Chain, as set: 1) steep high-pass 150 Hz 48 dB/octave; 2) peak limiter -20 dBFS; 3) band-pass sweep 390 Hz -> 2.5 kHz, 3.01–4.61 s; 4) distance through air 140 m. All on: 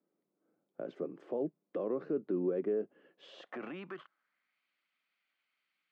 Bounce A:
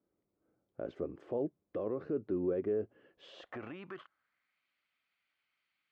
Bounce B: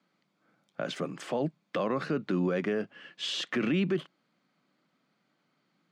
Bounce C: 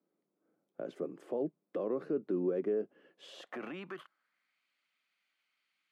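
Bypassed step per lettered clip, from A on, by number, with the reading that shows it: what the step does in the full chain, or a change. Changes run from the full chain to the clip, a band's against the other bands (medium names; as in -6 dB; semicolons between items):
1, 125 Hz band +3.0 dB; 3, 500 Hz band -11.5 dB; 4, 4 kHz band +2.5 dB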